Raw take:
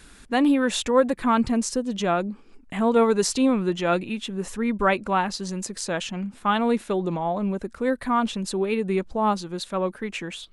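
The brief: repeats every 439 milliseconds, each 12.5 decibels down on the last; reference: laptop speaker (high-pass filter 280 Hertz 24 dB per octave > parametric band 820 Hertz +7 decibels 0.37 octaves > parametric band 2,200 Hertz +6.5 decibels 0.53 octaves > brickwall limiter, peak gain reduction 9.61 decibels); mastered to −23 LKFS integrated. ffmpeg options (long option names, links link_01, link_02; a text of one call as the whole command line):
ffmpeg -i in.wav -af "highpass=frequency=280:width=0.5412,highpass=frequency=280:width=1.3066,equalizer=frequency=820:width_type=o:width=0.37:gain=7,equalizer=frequency=2200:width_type=o:width=0.53:gain=6.5,aecho=1:1:439|878|1317:0.237|0.0569|0.0137,volume=3dB,alimiter=limit=-11dB:level=0:latency=1" out.wav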